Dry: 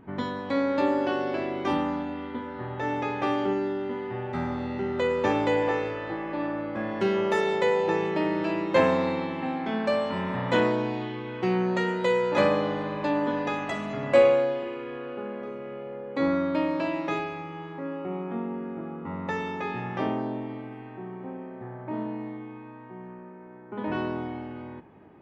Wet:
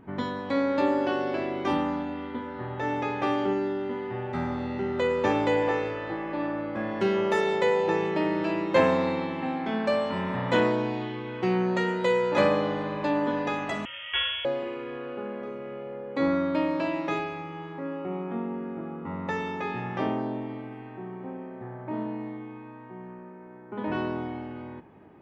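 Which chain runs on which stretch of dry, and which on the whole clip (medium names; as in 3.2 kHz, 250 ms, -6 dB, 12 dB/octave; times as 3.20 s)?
13.85–14.45 s: high-pass 800 Hz 24 dB/octave + frequency inversion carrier 3.9 kHz
whole clip: none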